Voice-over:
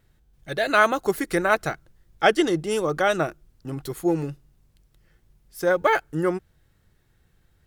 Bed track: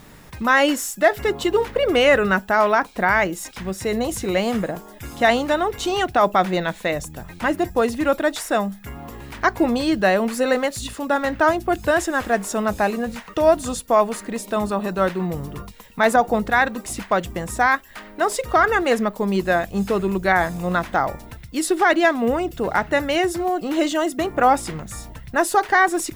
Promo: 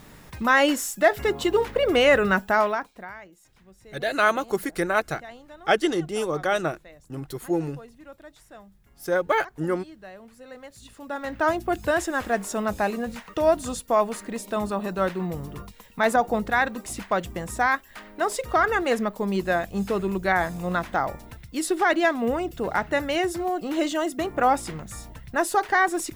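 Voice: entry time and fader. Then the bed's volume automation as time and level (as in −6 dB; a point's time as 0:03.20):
3.45 s, −2.5 dB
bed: 0:02.57 −2.5 dB
0:03.22 −26 dB
0:10.41 −26 dB
0:11.51 −4.5 dB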